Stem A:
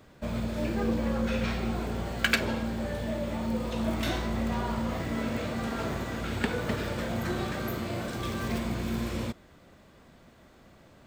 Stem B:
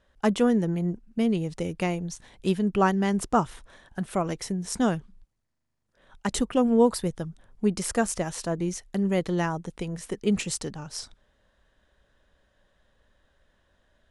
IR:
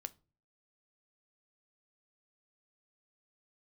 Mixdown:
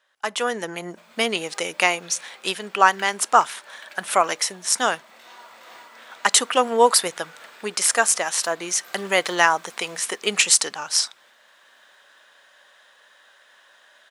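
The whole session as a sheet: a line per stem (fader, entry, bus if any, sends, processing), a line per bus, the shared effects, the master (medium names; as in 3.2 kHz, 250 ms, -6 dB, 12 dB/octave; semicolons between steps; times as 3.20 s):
-13.5 dB, 0.75 s, no send, echo send -3 dB, compression 2:1, threshold -33 dBFS, peak gain reduction 8 dB; random flutter of the level, depth 65%
+1.5 dB, 0.00 s, send -5 dB, no echo send, none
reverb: on, RT60 0.35 s, pre-delay 7 ms
echo: feedback delay 415 ms, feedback 55%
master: high-pass 1 kHz 12 dB/octave; level rider gain up to 14.5 dB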